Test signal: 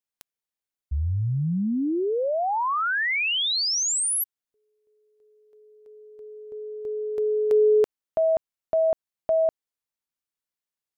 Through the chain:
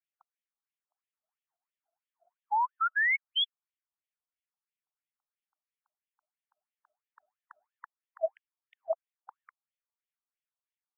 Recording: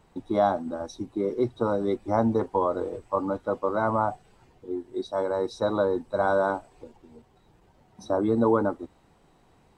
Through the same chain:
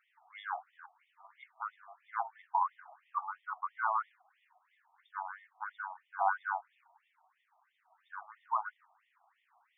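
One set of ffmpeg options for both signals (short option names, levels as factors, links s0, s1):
-af "afftfilt=real='re*between(b*sr/1024,900*pow(2600/900,0.5+0.5*sin(2*PI*3*pts/sr))/1.41,900*pow(2600/900,0.5+0.5*sin(2*PI*3*pts/sr))*1.41)':imag='im*between(b*sr/1024,900*pow(2600/900,0.5+0.5*sin(2*PI*3*pts/sr))/1.41,900*pow(2600/900,0.5+0.5*sin(2*PI*3*pts/sr))*1.41)':win_size=1024:overlap=0.75,volume=0.891"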